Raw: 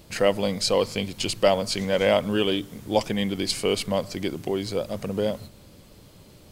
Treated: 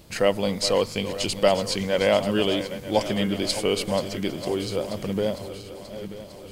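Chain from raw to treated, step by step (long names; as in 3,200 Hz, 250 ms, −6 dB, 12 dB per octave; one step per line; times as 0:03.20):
feedback delay that plays each chunk backwards 468 ms, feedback 70%, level −12 dB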